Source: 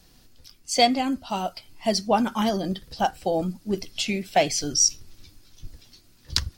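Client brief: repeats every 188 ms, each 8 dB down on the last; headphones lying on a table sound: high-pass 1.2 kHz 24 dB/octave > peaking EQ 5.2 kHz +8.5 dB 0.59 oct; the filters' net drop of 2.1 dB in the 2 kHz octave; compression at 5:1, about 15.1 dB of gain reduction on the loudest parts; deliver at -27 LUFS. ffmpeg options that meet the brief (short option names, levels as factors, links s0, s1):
-af "equalizer=f=2000:t=o:g=-3,acompressor=threshold=0.0251:ratio=5,highpass=f=1200:w=0.5412,highpass=f=1200:w=1.3066,equalizer=f=5200:t=o:w=0.59:g=8.5,aecho=1:1:188|376|564|752|940:0.398|0.159|0.0637|0.0255|0.0102,volume=1.88"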